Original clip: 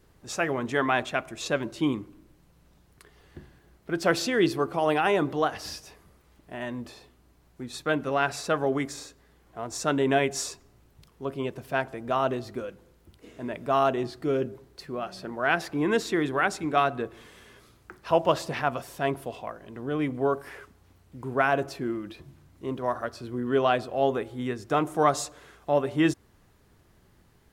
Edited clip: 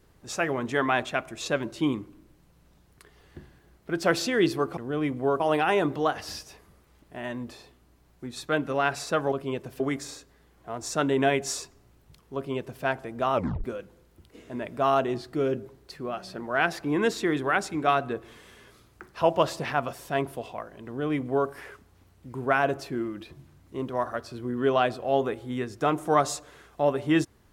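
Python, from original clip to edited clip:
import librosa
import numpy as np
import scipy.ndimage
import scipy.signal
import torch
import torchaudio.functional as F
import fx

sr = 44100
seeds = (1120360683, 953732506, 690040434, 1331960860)

y = fx.edit(x, sr, fx.duplicate(start_s=11.24, length_s=0.48, to_s=8.69),
    fx.tape_stop(start_s=12.23, length_s=0.3),
    fx.duplicate(start_s=19.75, length_s=0.63, to_s=4.77), tone=tone)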